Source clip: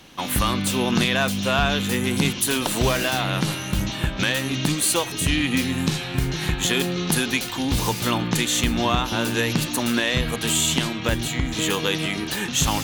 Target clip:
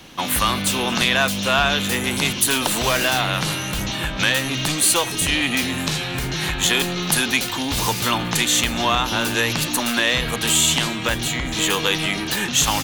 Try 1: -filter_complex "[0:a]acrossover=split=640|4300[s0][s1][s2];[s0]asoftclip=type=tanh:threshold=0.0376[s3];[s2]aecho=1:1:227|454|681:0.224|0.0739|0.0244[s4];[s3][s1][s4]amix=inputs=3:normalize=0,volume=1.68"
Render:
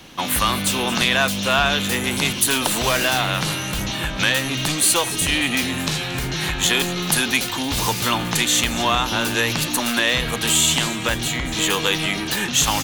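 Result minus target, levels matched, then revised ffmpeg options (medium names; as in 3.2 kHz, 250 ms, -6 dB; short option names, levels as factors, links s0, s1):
echo-to-direct +9 dB
-filter_complex "[0:a]acrossover=split=640|4300[s0][s1][s2];[s0]asoftclip=type=tanh:threshold=0.0376[s3];[s2]aecho=1:1:227|454:0.0794|0.0262[s4];[s3][s1][s4]amix=inputs=3:normalize=0,volume=1.68"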